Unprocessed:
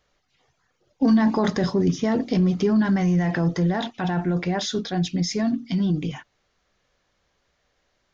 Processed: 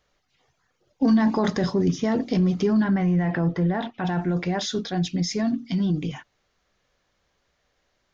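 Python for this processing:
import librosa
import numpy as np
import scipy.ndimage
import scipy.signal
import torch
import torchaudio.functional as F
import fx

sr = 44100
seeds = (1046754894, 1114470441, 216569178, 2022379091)

y = fx.lowpass(x, sr, hz=2700.0, slope=12, at=(2.84, 4.05))
y = F.gain(torch.from_numpy(y), -1.0).numpy()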